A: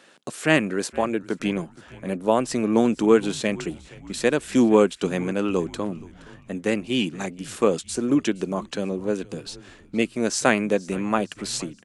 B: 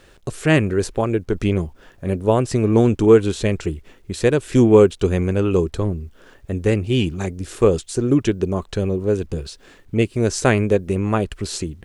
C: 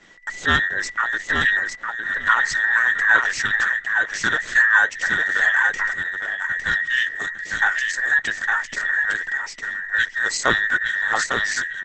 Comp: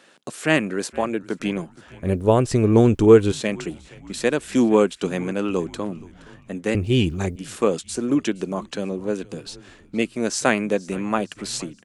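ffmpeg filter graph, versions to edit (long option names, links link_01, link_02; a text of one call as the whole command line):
ffmpeg -i take0.wav -i take1.wav -filter_complex "[1:a]asplit=2[link_01][link_02];[0:a]asplit=3[link_03][link_04][link_05];[link_03]atrim=end=2.032[link_06];[link_01]atrim=start=2.028:end=3.322[link_07];[link_04]atrim=start=3.318:end=6.752[link_08];[link_02]atrim=start=6.748:end=7.362[link_09];[link_05]atrim=start=7.358[link_10];[link_06][link_07]acrossfade=duration=0.004:curve1=hsin:curve2=hsin[link_11];[link_11][link_08]acrossfade=duration=0.004:curve1=hsin:curve2=hsin[link_12];[link_12][link_09]acrossfade=duration=0.004:curve1=hsin:curve2=hsin[link_13];[link_13][link_10]acrossfade=duration=0.004:curve1=hsin:curve2=hsin" out.wav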